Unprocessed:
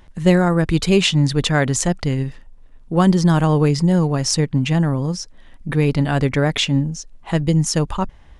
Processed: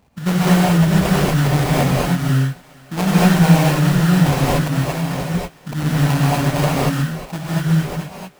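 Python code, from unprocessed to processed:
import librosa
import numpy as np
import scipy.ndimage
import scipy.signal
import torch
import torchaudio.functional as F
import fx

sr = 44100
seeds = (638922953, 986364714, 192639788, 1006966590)

p1 = fx.fade_out_tail(x, sr, length_s=1.9)
p2 = scipy.signal.sosfilt(scipy.signal.butter(2, 120.0, 'highpass', fs=sr, output='sos'), p1)
p3 = fx.cheby_harmonics(p2, sr, harmonics=(3, 7), levels_db=(-19, -32), full_scale_db=-2.0)
p4 = fx.over_compress(p3, sr, threshold_db=-27.0, ratio=-1.0)
p5 = p3 + (p4 * 10.0 ** (-3.0 / 20.0))
p6 = fx.bass_treble(p5, sr, bass_db=-12, treble_db=-2, at=(4.6, 5.11))
p7 = fx.fixed_phaser(p6, sr, hz=2300.0, stages=8)
p8 = fx.sample_hold(p7, sr, seeds[0], rate_hz=1600.0, jitter_pct=20)
p9 = fx.echo_thinned(p8, sr, ms=451, feedback_pct=55, hz=400.0, wet_db=-22.0)
p10 = fx.rev_gated(p9, sr, seeds[1], gate_ms=260, shape='rising', drr_db=-7.0)
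y = p10 * 10.0 ** (-1.0 / 20.0)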